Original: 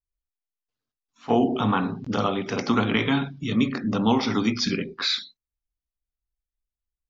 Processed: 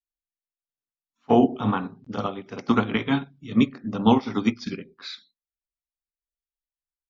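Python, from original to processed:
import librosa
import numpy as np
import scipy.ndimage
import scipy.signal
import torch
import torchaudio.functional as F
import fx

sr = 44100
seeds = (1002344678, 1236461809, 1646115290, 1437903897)

y = fx.high_shelf(x, sr, hz=2200.0, db=-4.5)
y = fx.upward_expand(y, sr, threshold_db=-31.0, expansion=2.5)
y = y * 10.0 ** (5.0 / 20.0)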